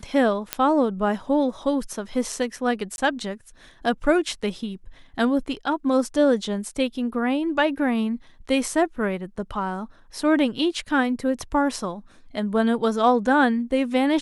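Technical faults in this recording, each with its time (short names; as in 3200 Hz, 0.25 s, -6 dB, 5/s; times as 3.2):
0.53 pop -5 dBFS
2.96–2.98 gap 21 ms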